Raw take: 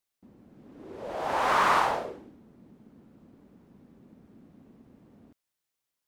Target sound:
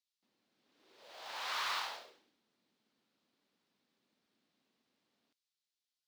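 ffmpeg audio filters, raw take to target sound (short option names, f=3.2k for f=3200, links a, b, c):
-af "bandpass=f=4.2k:t=q:w=1.9:csg=0,acrusher=bits=4:mode=log:mix=0:aa=0.000001"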